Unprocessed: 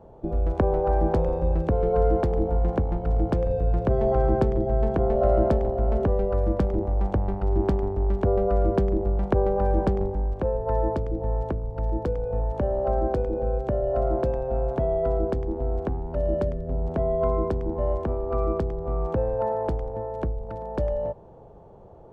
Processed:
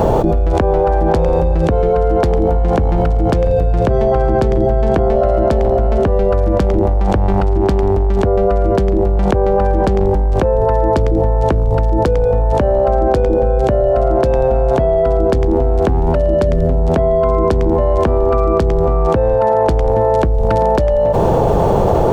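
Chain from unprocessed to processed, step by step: high shelf 2200 Hz +11.5 dB; fast leveller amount 100%; gain +4.5 dB

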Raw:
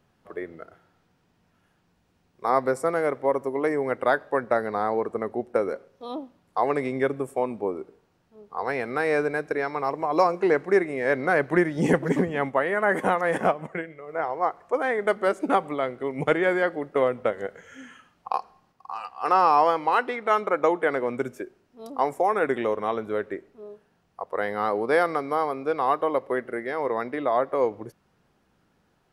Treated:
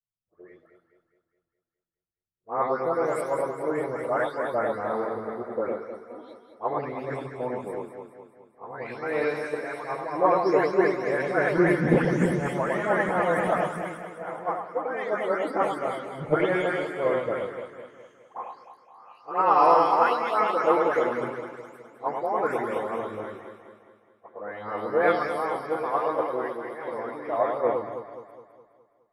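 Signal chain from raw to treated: spectral delay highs late, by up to 0.393 s; echo with dull and thin repeats by turns 0.104 s, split 1200 Hz, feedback 84%, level -3 dB; three-band expander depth 100%; gain -3.5 dB

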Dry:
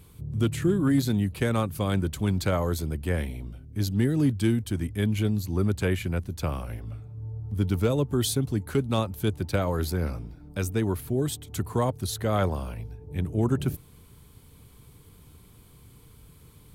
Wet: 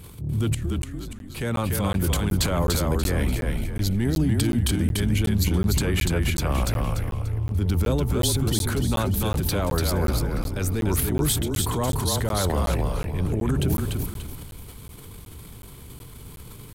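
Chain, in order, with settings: 0.49–1.34 flipped gate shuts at -23 dBFS, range -27 dB; limiter -24 dBFS, peak gain reduction 10.5 dB; transient shaper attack -4 dB, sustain +10 dB; on a send: frequency-shifting echo 0.292 s, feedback 35%, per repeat -30 Hz, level -3 dB; on the sum: crackling interface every 0.37 s, samples 512, zero, from 0.82; gain +7.5 dB

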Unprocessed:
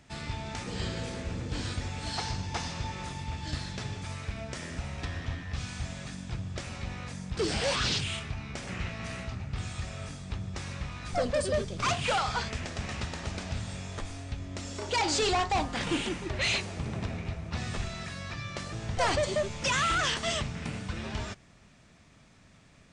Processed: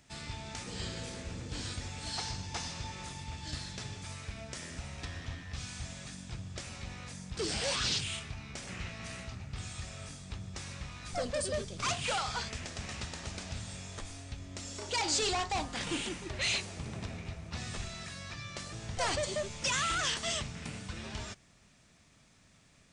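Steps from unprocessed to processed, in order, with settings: high shelf 4000 Hz +9.5 dB; gain -6.5 dB

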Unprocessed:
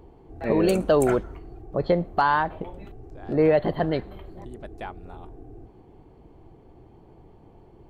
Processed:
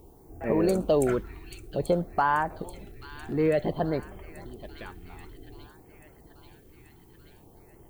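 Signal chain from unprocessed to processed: thin delay 0.834 s, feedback 65%, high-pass 2200 Hz, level -9 dB; added noise violet -62 dBFS; LFO notch sine 0.54 Hz 550–4000 Hz; gain -3 dB

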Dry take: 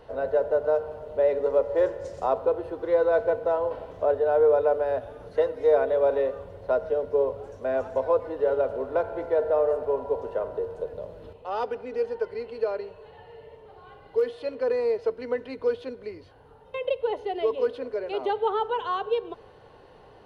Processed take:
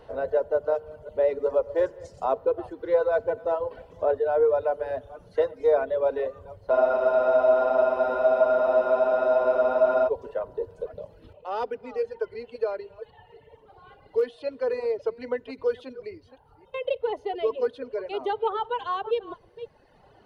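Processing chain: reverse delay 0.273 s, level -12 dB; reverb removal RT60 1.6 s; spectral freeze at 6.73, 3.33 s

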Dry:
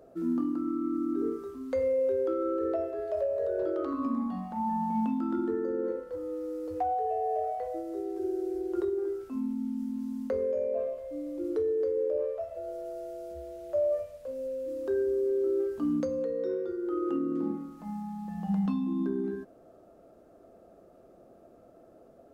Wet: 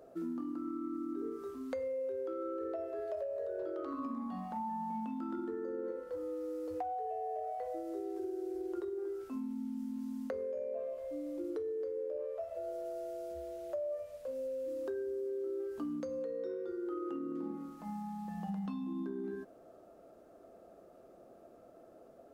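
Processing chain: low shelf 260 Hz -7 dB; compressor, threshold -36 dBFS, peak gain reduction 9.5 dB

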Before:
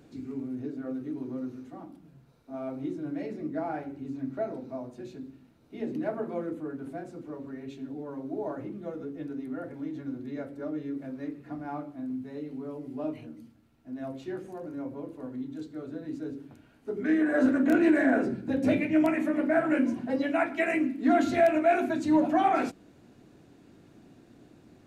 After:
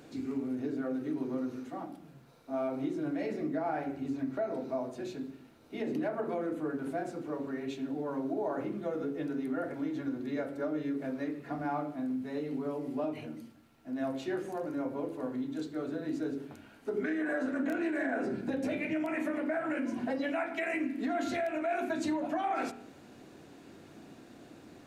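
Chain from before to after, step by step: low shelf 210 Hz -9.5 dB; notches 60/120/180/240/300/360/420 Hz; compressor 6:1, threshold -35 dBFS, peak gain reduction 15.5 dB; limiter -31 dBFS, peak gain reduction 6 dB; reverb RT60 0.60 s, pre-delay 33 ms, DRR 11.5 dB; gain +6.5 dB

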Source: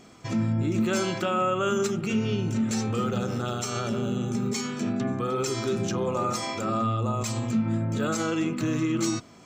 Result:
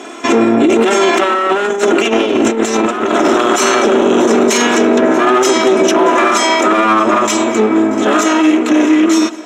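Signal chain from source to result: minimum comb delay 3 ms; Doppler pass-by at 2.89, 10 m/s, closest 9 m; HPF 260 Hz 24 dB/oct; bell 4600 Hz -14 dB 0.21 oct; multi-head echo 0.211 s, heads first and third, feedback 44%, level -23 dB; negative-ratio compressor -38 dBFS, ratio -0.5; air absorption 51 m; maximiser +34.5 dB; gain -1.5 dB

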